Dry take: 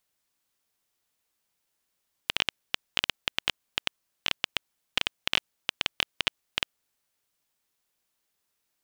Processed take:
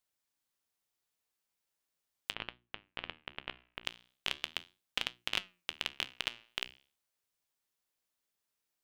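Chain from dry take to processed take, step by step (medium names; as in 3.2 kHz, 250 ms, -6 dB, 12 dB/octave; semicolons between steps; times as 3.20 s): hum notches 60/120/180/240/300/360 Hz; flange 0.39 Hz, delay 7.9 ms, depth 9.9 ms, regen +78%; 2.34–3.85 s: distance through air 470 m; trim -3 dB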